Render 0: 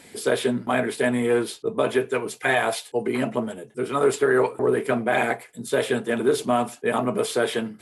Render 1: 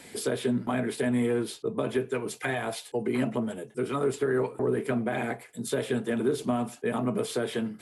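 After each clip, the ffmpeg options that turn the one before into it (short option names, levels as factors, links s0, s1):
-filter_complex "[0:a]acrossover=split=300[s0][s1];[s1]acompressor=threshold=0.0282:ratio=4[s2];[s0][s2]amix=inputs=2:normalize=0"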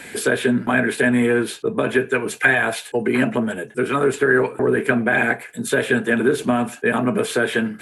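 -af "equalizer=f=125:t=o:w=0.33:g=-3,equalizer=f=1600:t=o:w=0.33:g=12,equalizer=f=2500:t=o:w=0.33:g=6,equalizer=f=5000:t=o:w=0.33:g=-5,volume=2.66"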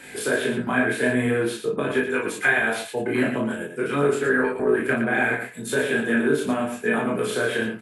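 -filter_complex "[0:a]flanger=delay=20:depth=4:speed=0.46,asplit=2[s0][s1];[s1]aecho=0:1:34.99|116.6:0.794|0.447[s2];[s0][s2]amix=inputs=2:normalize=0,volume=0.708"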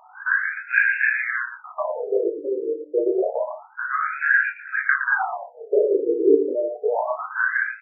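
-af "aeval=exprs='val(0)+0.0141*(sin(2*PI*60*n/s)+sin(2*PI*2*60*n/s)/2+sin(2*PI*3*60*n/s)/3+sin(2*PI*4*60*n/s)/4+sin(2*PI*5*60*n/s)/5)':c=same,afftfilt=real='re*between(b*sr/1024,380*pow(2000/380,0.5+0.5*sin(2*PI*0.28*pts/sr))/1.41,380*pow(2000/380,0.5+0.5*sin(2*PI*0.28*pts/sr))*1.41)':imag='im*between(b*sr/1024,380*pow(2000/380,0.5+0.5*sin(2*PI*0.28*pts/sr))/1.41,380*pow(2000/380,0.5+0.5*sin(2*PI*0.28*pts/sr))*1.41)':win_size=1024:overlap=0.75,volume=2.24"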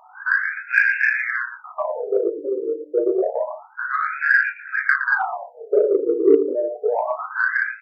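-af "aeval=exprs='0.708*(cos(1*acos(clip(val(0)/0.708,-1,1)))-cos(1*PI/2))+0.01*(cos(7*acos(clip(val(0)/0.708,-1,1)))-cos(7*PI/2))':c=same,volume=1.26"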